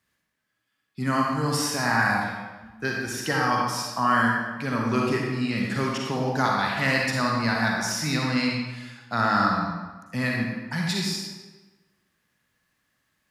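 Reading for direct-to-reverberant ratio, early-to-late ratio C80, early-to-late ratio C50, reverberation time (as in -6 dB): -1.5 dB, 2.0 dB, -0.5 dB, 1.2 s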